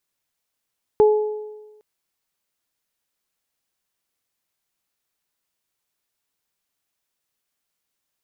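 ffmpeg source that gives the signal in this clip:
-f lavfi -i "aevalsrc='0.355*pow(10,-3*t/1.19)*sin(2*PI*425*t)+0.1*pow(10,-3*t/0.95)*sin(2*PI*850*t)':d=0.81:s=44100"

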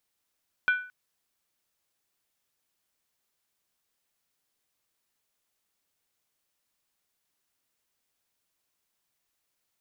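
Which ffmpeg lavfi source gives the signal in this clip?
-f lavfi -i "aevalsrc='0.133*pow(10,-3*t/0.43)*sin(2*PI*1490*t)+0.0422*pow(10,-3*t/0.341)*sin(2*PI*2375.1*t)+0.0133*pow(10,-3*t/0.294)*sin(2*PI*3182.6*t)+0.00422*pow(10,-3*t/0.284)*sin(2*PI*3421*t)+0.00133*pow(10,-3*t/0.264)*sin(2*PI*3953*t)':d=0.22:s=44100"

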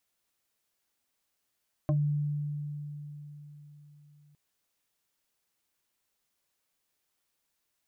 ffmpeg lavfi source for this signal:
-f lavfi -i "aevalsrc='0.075*pow(10,-3*t/4.11)*sin(2*PI*147*t+1.2*pow(10,-3*t/0.14)*sin(2*PI*3.12*147*t))':d=2.46:s=44100"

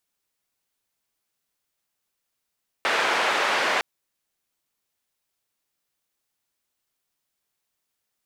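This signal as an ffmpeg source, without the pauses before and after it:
-f lavfi -i "anoisesrc=c=white:d=0.96:r=44100:seed=1,highpass=f=490,lowpass=f=2000,volume=-7dB"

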